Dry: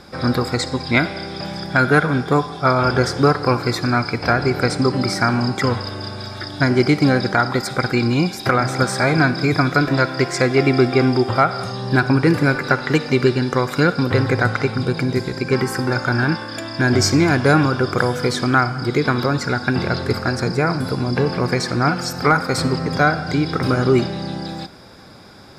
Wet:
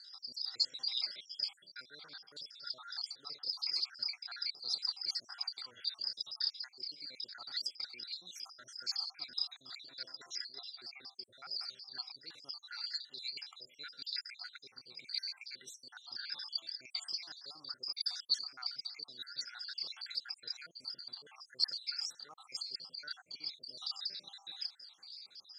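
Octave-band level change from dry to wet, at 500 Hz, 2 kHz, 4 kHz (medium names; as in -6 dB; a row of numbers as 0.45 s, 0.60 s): under -40 dB, -31.5 dB, -8.5 dB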